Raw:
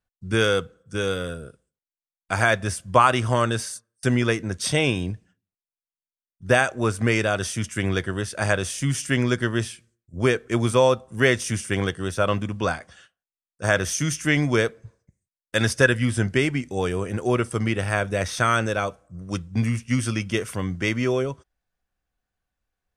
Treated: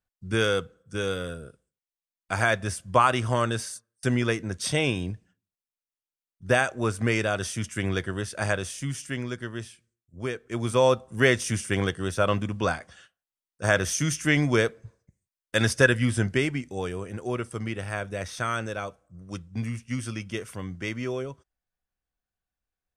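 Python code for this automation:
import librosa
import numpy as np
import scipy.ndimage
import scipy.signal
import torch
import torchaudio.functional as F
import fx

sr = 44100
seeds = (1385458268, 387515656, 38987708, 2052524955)

y = fx.gain(x, sr, db=fx.line((8.41, -3.5), (9.29, -11.0), (10.4, -11.0), (10.89, -1.5), (16.12, -1.5), (17.07, -8.0)))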